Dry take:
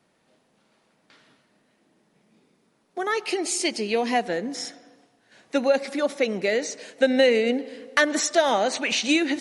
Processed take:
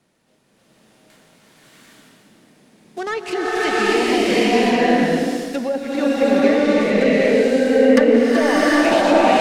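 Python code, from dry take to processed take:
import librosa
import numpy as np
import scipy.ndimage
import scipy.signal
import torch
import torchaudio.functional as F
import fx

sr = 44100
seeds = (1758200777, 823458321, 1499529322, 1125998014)

p1 = fx.dead_time(x, sr, dead_ms=0.084)
p2 = fx.env_lowpass_down(p1, sr, base_hz=1200.0, full_db=-17.5)
p3 = fx.peak_eq(p2, sr, hz=950.0, db=-5.0, octaves=2.9)
p4 = fx.over_compress(p3, sr, threshold_db=-27.0, ratio=-1.0)
p5 = p3 + (p4 * 10.0 ** (-2.0 / 20.0))
p6 = fx.rev_bloom(p5, sr, seeds[0], attack_ms=770, drr_db=-10.0)
y = p6 * 10.0 ** (-1.0 / 20.0)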